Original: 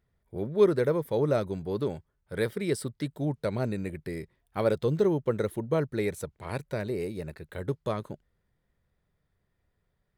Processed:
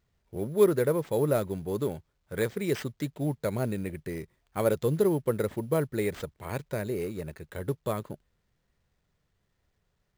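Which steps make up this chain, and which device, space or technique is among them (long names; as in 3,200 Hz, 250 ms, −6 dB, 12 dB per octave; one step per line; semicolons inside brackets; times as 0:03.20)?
early companding sampler (sample-rate reduction 11,000 Hz, jitter 0%; log-companded quantiser 8 bits)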